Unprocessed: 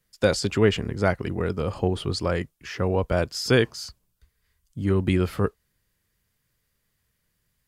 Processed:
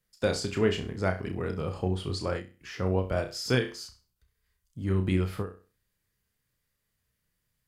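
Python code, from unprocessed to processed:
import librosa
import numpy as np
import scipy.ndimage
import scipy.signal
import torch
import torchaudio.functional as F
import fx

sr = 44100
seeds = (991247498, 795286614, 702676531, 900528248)

y = fx.room_flutter(x, sr, wall_m=5.5, rt60_s=0.3)
y = fx.end_taper(y, sr, db_per_s=160.0)
y = F.gain(torch.from_numpy(y), -6.5).numpy()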